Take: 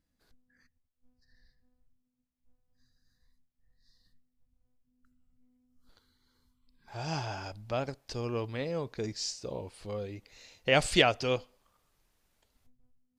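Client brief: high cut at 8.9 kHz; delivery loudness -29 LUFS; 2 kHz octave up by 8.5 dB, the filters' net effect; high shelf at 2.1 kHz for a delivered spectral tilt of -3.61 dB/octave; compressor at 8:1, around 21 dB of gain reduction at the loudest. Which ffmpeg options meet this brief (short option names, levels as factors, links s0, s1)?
-af "lowpass=8900,equalizer=f=2000:t=o:g=6.5,highshelf=f=2100:g=6.5,acompressor=threshold=0.0158:ratio=8,volume=3.76"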